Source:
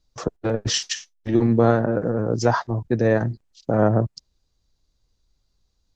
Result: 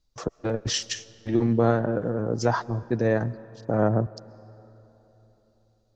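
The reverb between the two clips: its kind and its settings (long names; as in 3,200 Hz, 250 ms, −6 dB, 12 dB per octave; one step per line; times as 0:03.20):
comb and all-pass reverb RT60 3.8 s, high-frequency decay 0.6×, pre-delay 90 ms, DRR 20 dB
level −4 dB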